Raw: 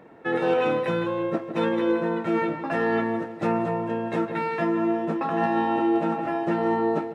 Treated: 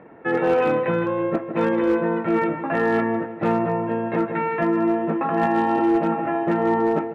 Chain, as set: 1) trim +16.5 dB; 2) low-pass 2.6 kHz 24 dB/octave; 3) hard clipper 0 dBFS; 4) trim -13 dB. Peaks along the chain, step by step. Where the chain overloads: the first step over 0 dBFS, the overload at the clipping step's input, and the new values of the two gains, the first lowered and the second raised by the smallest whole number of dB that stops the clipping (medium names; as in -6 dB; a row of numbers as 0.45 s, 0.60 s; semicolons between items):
+3.5 dBFS, +3.5 dBFS, 0.0 dBFS, -13.0 dBFS; step 1, 3.5 dB; step 1 +12.5 dB, step 4 -9 dB